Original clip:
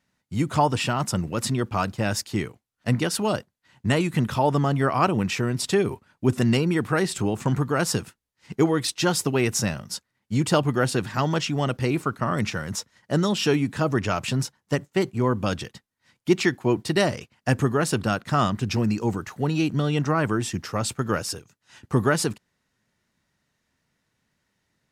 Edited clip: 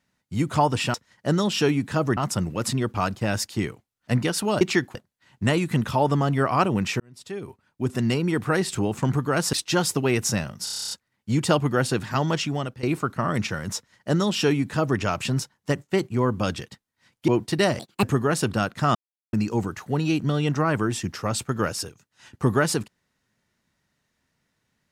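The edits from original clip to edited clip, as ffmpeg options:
-filter_complex "[0:a]asplit=22[a][b][c][d][e][f][g][h][i][j][k][l][m][n][o][p][q][r][s][t][u][v];[a]atrim=end=0.942[w];[b]atrim=start=12.788:end=14.022[x];[c]atrim=start=0.938:end=3.382[y];[d]atrim=start=16.308:end=16.652[z];[e]atrim=start=3.378:end=5.43,asetpts=PTS-STARTPTS,afade=t=out:st=2.048:d=0.004:c=hsin[aa];[f]atrim=start=5.43:end=7.962,asetpts=PTS-STARTPTS,afade=t=in:d=1.46[ab];[g]atrim=start=8.828:end=9.972[ac];[h]atrim=start=9.938:end=9.972[ad];[i]atrim=start=9.938:end=9.972[ae];[j]atrim=start=9.938:end=9.972[af];[k]atrim=start=9.938:end=9.972[ag];[l]atrim=start=9.938:end=9.972[ah];[m]atrim=start=9.938:end=9.972[ai];[n]atrim=start=9.938:end=9.972[aj];[o]atrim=start=9.938:end=9.972[ak];[p]atrim=start=9.938:end=11.86,asetpts=PTS-STARTPTS,afade=t=out:st=1.542:d=0.38:silence=0.141254[al];[q]atrim=start=11.86:end=16.312,asetpts=PTS-STARTPTS,afade=t=in:d=0.004:c=hsin:silence=0.141254[am];[r]atrim=start=16.648:end=17.164[an];[s]atrim=start=17.16:end=17.53,asetpts=PTS-STARTPTS,asetrate=67914,aresample=44100,atrim=end_sample=10595,asetpts=PTS-STARTPTS[ao];[t]atrim=start=17.526:end=18.45,asetpts=PTS-STARTPTS,afade=t=out:st=0.92:d=0.004:c=hsin[ap];[u]atrim=start=18.45:end=18.83,asetpts=PTS-STARTPTS,volume=0[aq];[v]atrim=start=18.83,asetpts=PTS-STARTPTS,afade=t=in:d=0.004:c=hsin[ar];[w][x]acrossfade=d=0.004:c1=hsin:c2=hsin[as];[as][y]acrossfade=d=0.004:c1=hsin:c2=hsin[at];[at][z]acrossfade=d=0.004:c1=hsin:c2=hsin[au];[aa][ab]concat=n=2:v=0:a=1[av];[au][av]acrossfade=d=0.004:c1=hsin:c2=hsin[aw];[aw][ac]acrossfade=d=0.004:c1=hsin:c2=hsin[ax];[ax][ad]acrossfade=d=0.004:c1=hsin:c2=hsin[ay];[ay][ae]acrossfade=d=0.004:c1=hsin:c2=hsin[az];[az][af]acrossfade=d=0.004:c1=hsin:c2=hsin[ba];[ba][ag]acrossfade=d=0.004:c1=hsin:c2=hsin[bb];[bb][ah]acrossfade=d=0.004:c1=hsin:c2=hsin[bc];[bc][ai]acrossfade=d=0.004:c1=hsin:c2=hsin[bd];[bd][aj]acrossfade=d=0.004:c1=hsin:c2=hsin[be];[be][ak]acrossfade=d=0.004:c1=hsin:c2=hsin[bf];[al][am]concat=n=2:v=0:a=1[bg];[bf][bg]acrossfade=d=0.004:c1=hsin:c2=hsin[bh];[bh][an]acrossfade=d=0.004:c1=hsin:c2=hsin[bi];[bi][ao]acrossfade=d=0.004:c1=hsin:c2=hsin[bj];[ap][aq][ar]concat=n=3:v=0:a=1[bk];[bj][bk]acrossfade=d=0.004:c1=hsin:c2=hsin"

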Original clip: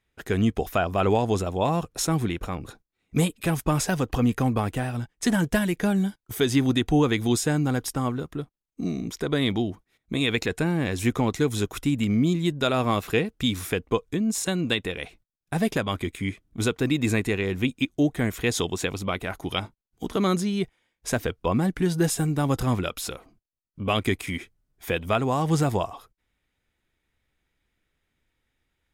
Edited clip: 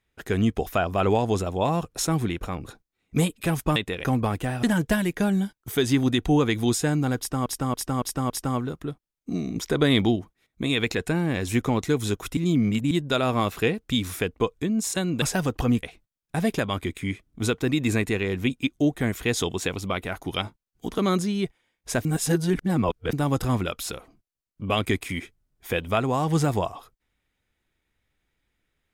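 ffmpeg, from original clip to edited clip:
-filter_complex "[0:a]asplit=16[a][b][c][d][e][f][g][h][i][j][k][l][m][n][o][p];[a]atrim=end=3.762[q];[b]atrim=start=14.728:end=15.012[r];[c]atrim=start=4.368:end=4.962[s];[d]atrim=start=5.258:end=8.092[t];[e]atrim=start=7.808:end=8.092[u];[f]atrim=start=7.808:end=8.092[v];[g]atrim=start=7.808:end=8.092[w];[h]atrim=start=7.808:end=9.072[x];[i]atrim=start=9.068:end=9.672,asetpts=PTS-STARTPTS,volume=4dB[y];[j]atrim=start=9.668:end=11.882[z];[k]atrim=start=11.878:end=12.422,asetpts=PTS-STARTPTS,areverse[aa];[l]atrim=start=12.418:end=14.732[ab];[m]atrim=start=3.758:end=4.372[ac];[n]atrim=start=15.008:end=21.232[ad];[o]atrim=start=21.228:end=22.312,asetpts=PTS-STARTPTS,areverse[ae];[p]atrim=start=22.308[af];[q][r]acrossfade=d=0.004:c1=hsin:c2=hsin[ag];[ag][s]acrossfade=d=0.004:c1=hsin:c2=hsin[ah];[ah][t]acrossfade=d=0.004:c1=hsin:c2=hsin[ai];[ai][u]acrossfade=d=0.004:c1=hsin:c2=hsin[aj];[aj][v]acrossfade=d=0.004:c1=hsin:c2=hsin[ak];[ak][w]acrossfade=d=0.004:c1=hsin:c2=hsin[al];[al][x]acrossfade=d=0.004:c1=hsin:c2=hsin[am];[am][y]acrossfade=d=0.004:c1=hsin:c2=hsin[an];[an][z]acrossfade=d=0.004:c1=hsin:c2=hsin[ao];[ao][aa]acrossfade=d=0.004:c1=hsin:c2=hsin[ap];[ap][ab]acrossfade=d=0.004:c1=hsin:c2=hsin[aq];[aq][ac]acrossfade=d=0.004:c1=hsin:c2=hsin[ar];[ar][ad]acrossfade=d=0.004:c1=hsin:c2=hsin[as];[as][ae]acrossfade=d=0.004:c1=hsin:c2=hsin[at];[at][af]acrossfade=d=0.004:c1=hsin:c2=hsin"

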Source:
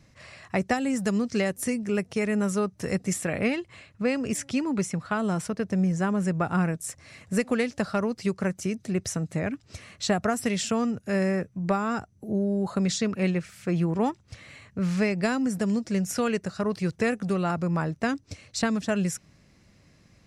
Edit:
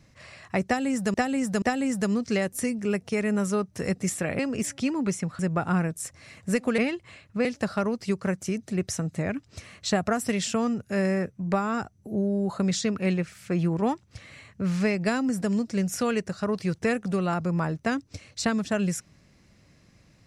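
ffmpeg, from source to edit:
-filter_complex "[0:a]asplit=7[a][b][c][d][e][f][g];[a]atrim=end=1.142[h];[b]atrim=start=0.658:end=1.142[i];[c]atrim=start=0.658:end=3.432[j];[d]atrim=start=4.098:end=5.102[k];[e]atrim=start=6.228:end=7.622[l];[f]atrim=start=3.428:end=4.102[m];[g]atrim=start=7.618[n];[h][i]acrossfade=d=0.004:c1=hsin:c2=hsin[o];[o][j]acrossfade=d=0.004:c1=hsin:c2=hsin[p];[p][k]acrossfade=d=0.004:c1=hsin:c2=hsin[q];[q][l]acrossfade=d=0.004:c1=hsin:c2=hsin[r];[r][m]acrossfade=d=0.004:c1=hsin:c2=hsin[s];[s][n]acrossfade=d=0.004:c1=hsin:c2=hsin"

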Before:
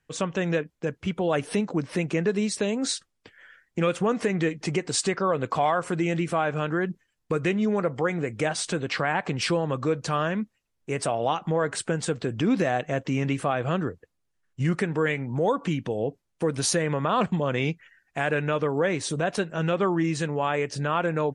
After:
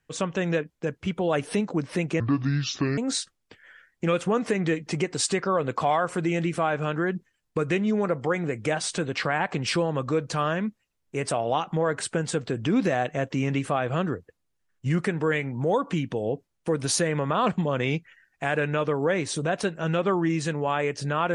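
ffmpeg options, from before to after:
-filter_complex "[0:a]asplit=3[a][b][c];[a]atrim=end=2.204[d];[b]atrim=start=2.2:end=2.72,asetpts=PTS-STARTPTS,asetrate=29547,aresample=44100[e];[c]atrim=start=2.716[f];[d][e]acrossfade=d=0.004:c1=hsin:c2=hsin[g];[g][f]acrossfade=d=0.004:c1=hsin:c2=hsin"

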